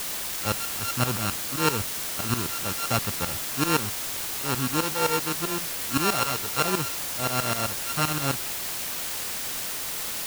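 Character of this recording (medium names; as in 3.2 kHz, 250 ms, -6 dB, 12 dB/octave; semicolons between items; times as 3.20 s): a buzz of ramps at a fixed pitch in blocks of 32 samples; tremolo saw up 7.7 Hz, depth 90%; a quantiser's noise floor 6-bit, dither triangular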